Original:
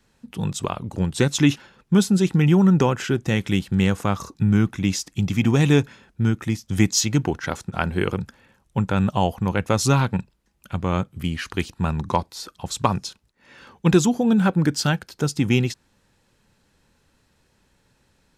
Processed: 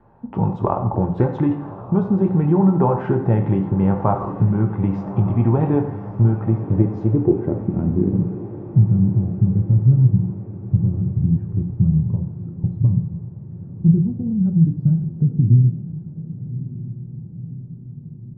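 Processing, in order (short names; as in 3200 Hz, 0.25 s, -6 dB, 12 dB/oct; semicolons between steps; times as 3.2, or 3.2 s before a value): LPF 2100 Hz 6 dB/oct; compressor 3:1, threshold -29 dBFS, peak gain reduction 14 dB; low-pass sweep 870 Hz -> 150 Hz, 6.14–8.77; diffused feedback echo 1.143 s, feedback 59%, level -14 dB; on a send at -3 dB: reverb RT60 0.95 s, pre-delay 4 ms; on the sum: gain +9 dB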